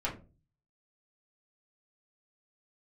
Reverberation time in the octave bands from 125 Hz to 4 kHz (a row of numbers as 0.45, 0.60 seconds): 0.65, 0.45, 0.40, 0.30, 0.25, 0.20 seconds